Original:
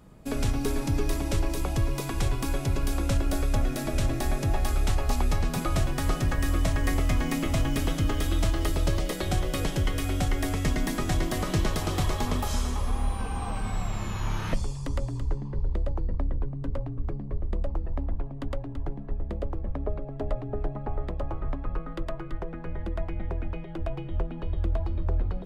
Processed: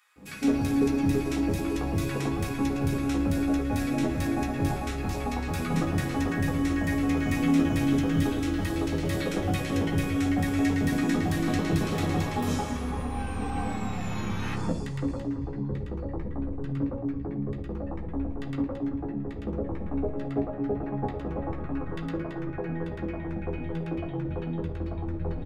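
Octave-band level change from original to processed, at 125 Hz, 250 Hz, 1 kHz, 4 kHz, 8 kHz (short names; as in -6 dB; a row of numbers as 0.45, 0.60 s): -1.0, +6.5, +0.5, -3.0, -4.5 dB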